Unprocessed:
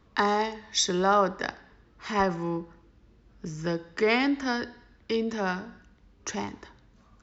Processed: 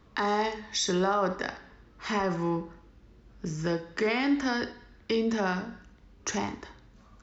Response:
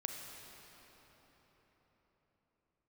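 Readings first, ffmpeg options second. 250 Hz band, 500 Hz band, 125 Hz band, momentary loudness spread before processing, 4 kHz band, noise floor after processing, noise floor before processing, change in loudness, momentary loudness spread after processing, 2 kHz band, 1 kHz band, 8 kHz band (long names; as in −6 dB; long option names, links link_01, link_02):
+0.5 dB, −1.5 dB, +1.0 dB, 16 LU, −2.5 dB, −57 dBFS, −60 dBFS, −2.0 dB, 15 LU, −2.0 dB, −3.0 dB, can't be measured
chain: -filter_complex "[0:a]alimiter=limit=-21dB:level=0:latency=1:release=69[link_01];[1:a]atrim=start_sample=2205,atrim=end_sample=3528[link_02];[link_01][link_02]afir=irnorm=-1:irlink=0,volume=4.5dB"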